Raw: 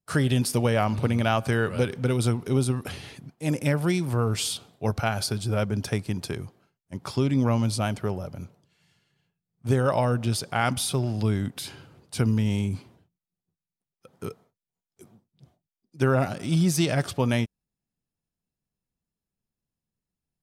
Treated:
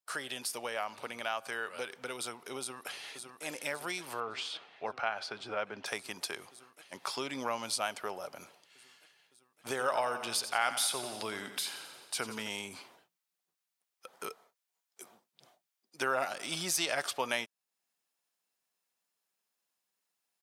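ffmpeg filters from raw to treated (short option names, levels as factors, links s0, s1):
-filter_complex "[0:a]asplit=2[s0][s1];[s1]afade=t=in:st=2.59:d=0.01,afade=t=out:st=3.45:d=0.01,aecho=0:1:560|1120|1680|2240|2800|3360|3920|4480|5040|5600|6160|6720:0.298538|0.223904|0.167928|0.125946|0.0944594|0.0708445|0.0531334|0.03985|0.0298875|0.0224157|0.0168117|0.0126088[s2];[s0][s2]amix=inputs=2:normalize=0,asettb=1/sr,asplit=3[s3][s4][s5];[s3]atrim=end=4.204[s6];[s4]atrim=start=4.2:end=5.86,asetpts=PTS-STARTPTS,afade=t=in:d=0.004:c=qsin,afade=t=out:st=1.656:d=0.004:c=qsin,lowpass=2700[s7];[s5]atrim=start=5.856[s8];[s6][s7]acrossfade=d=0.004:c1=hsin:c2=qsin[s9];[s9][s8]acrossfade=d=0.004:c1=qsin:c2=hsin,asettb=1/sr,asplit=3[s10][s11][s12];[s10]atrim=end=9.674[s13];[s11]atrim=start=9.67:end=12.48,asetpts=PTS-STARTPTS,afade=t=in:d=0.004:c=qsin,afade=t=out:st=2.806:d=0.004:c=qsin,aecho=1:1:87|174|261|348|435|522:0.251|0.138|0.076|0.0418|0.023|0.0126,atrim=end_sample=123921[s14];[s12]atrim=start=12.476[s15];[s13][s14]acrossfade=d=0.004:c1=hsin:c2=qsin[s16];[s16][s15]acrossfade=d=0.004:c1=qsin:c2=hsin,dynaudnorm=f=820:g=11:m=3.76,highpass=760,acompressor=threshold=0.00501:ratio=1.5"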